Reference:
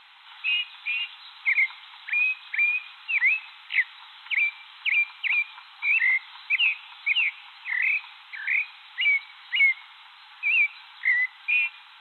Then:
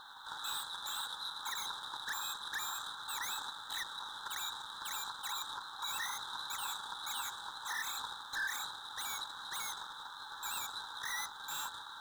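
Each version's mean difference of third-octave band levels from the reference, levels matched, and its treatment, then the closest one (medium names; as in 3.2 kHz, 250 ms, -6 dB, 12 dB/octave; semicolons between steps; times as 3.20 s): 20.0 dB: companding laws mixed up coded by A; elliptic band-stop 1.6–3.7 kHz, stop band 40 dB; peak limiter -41 dBFS, peak gain reduction 9.5 dB; trim +11.5 dB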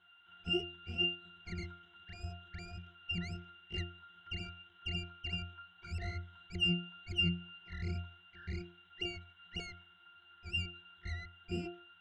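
12.0 dB: tracing distortion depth 0.18 ms; peaking EQ 840 Hz -14 dB 0.24 oct; pitch-class resonator F, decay 0.37 s; trim +11 dB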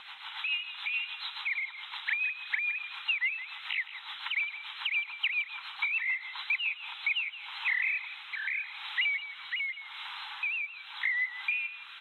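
3.0 dB: compression 16:1, threshold -35 dBFS, peak gain reduction 19.5 dB; rotary cabinet horn 7 Hz, later 0.85 Hz, at 6.52 s; feedback delay 167 ms, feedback 26%, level -13 dB; trim +8.5 dB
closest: third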